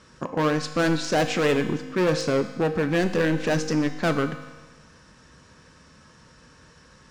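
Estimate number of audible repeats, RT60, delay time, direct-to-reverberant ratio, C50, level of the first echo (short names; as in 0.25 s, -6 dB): none, 1.3 s, none, 7.0 dB, 9.5 dB, none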